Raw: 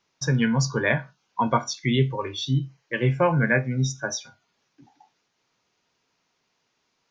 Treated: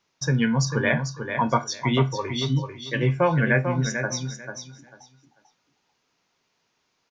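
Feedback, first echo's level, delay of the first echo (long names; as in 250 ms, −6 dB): 20%, −7.5 dB, 444 ms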